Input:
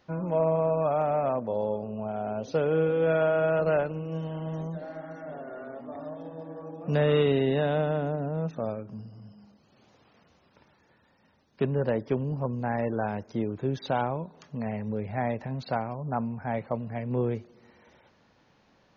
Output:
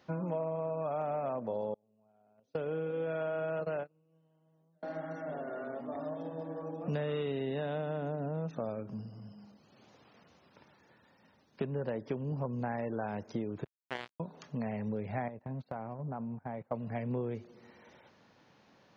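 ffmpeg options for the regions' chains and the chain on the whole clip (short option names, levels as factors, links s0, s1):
-filter_complex "[0:a]asettb=1/sr,asplit=3[s0][s1][s2];[s0]atrim=end=1.744[s3];[s1]atrim=start=1.74:end=4.83,asetpts=PTS-STARTPTS,afade=t=in:d=0.004:c=qsin,afade=t=out:st=3.086:d=0.004:c=qsin,agate=range=0.0158:threshold=0.0447:ratio=16:release=100:detection=peak,acompressor=threshold=0.02:ratio=1.5:attack=3.2:release=140:knee=1:detection=peak[s4];[s2]atrim=start=4.826[s5];[s3][s4]acrossfade=d=0.004:c1=hsin:c2=qsin[s6];[s6][s5]acrossfade=d=0.004:c1=qsin:c2=hsin,asettb=1/sr,asplit=3[s7][s8][s9];[s7]atrim=end=13.644[s10];[s8]atrim=start=13.64:end=14.2,asetpts=PTS-STARTPTS,afade=t=in:d=0.004:c=qsin,afade=t=out:st=0.556:d=0.004:c=qsin,highpass=f=220:w=0.5412,highpass=f=220:w=1.3066,highshelf=f=2800:g=-8,acrusher=bits=2:mix=0:aa=0.5[s11];[s9]atrim=start=14.196[s12];[s10][s11]acrossfade=d=0.004:c1=hsin:c2=qsin[s13];[s13][s12]acrossfade=d=0.004:c1=qsin:c2=hsin,asettb=1/sr,asplit=3[s14][s15][s16];[s14]atrim=end=15.284[s17];[s15]atrim=start=15.28:end=16.72,asetpts=PTS-STARTPTS,afade=t=in:d=0.004:c=qsin,afade=t=out:st=1.436:d=0.004:c=qsin,agate=range=0.0891:threshold=0.0158:ratio=16:release=100:detection=peak,lowpass=f=1200:p=1,acompressor=threshold=0.02:ratio=10:attack=3.2:release=140:knee=1:detection=peak[s18];[s16]atrim=start=16.716[s19];[s17][s18]acrossfade=d=0.004:c1=hsin:c2=qsin[s20];[s20][s19]acrossfade=d=0.004:c1=qsin:c2=hsin,highpass=98,acompressor=threshold=0.0251:ratio=6"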